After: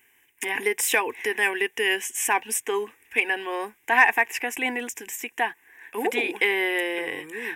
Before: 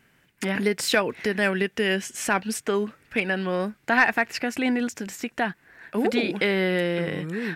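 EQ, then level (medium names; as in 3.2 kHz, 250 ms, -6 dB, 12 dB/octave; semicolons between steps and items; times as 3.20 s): tilt EQ +3 dB/octave; dynamic bell 770 Hz, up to +6 dB, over -36 dBFS, Q 0.79; static phaser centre 900 Hz, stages 8; 0.0 dB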